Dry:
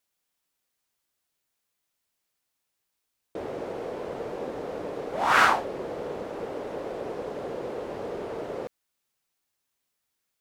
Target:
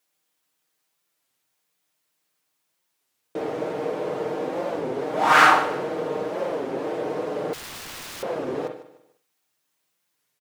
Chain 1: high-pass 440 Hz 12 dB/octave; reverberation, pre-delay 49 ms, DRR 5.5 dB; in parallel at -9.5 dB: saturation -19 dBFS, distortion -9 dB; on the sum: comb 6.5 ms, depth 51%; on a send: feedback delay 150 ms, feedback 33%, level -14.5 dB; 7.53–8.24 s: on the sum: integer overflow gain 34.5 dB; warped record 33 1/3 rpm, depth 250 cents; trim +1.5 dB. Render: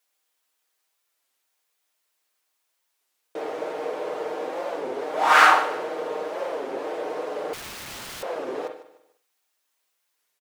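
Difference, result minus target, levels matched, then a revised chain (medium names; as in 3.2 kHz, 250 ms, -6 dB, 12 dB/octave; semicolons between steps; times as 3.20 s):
125 Hz band -12.5 dB
high-pass 130 Hz 12 dB/octave; reverberation, pre-delay 49 ms, DRR 5.5 dB; in parallel at -9.5 dB: saturation -19 dBFS, distortion -9 dB; on the sum: comb 6.5 ms, depth 51%; on a send: feedback delay 150 ms, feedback 33%, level -14.5 dB; 7.53–8.24 s: on the sum: integer overflow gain 34.5 dB; warped record 33 1/3 rpm, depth 250 cents; trim +1.5 dB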